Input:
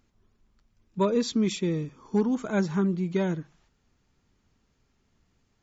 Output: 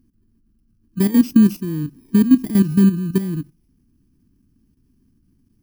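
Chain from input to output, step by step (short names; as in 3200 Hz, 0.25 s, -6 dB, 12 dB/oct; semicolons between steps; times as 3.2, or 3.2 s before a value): FFT order left unsorted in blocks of 32 samples; level quantiser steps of 12 dB; resonant low shelf 400 Hz +11.5 dB, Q 3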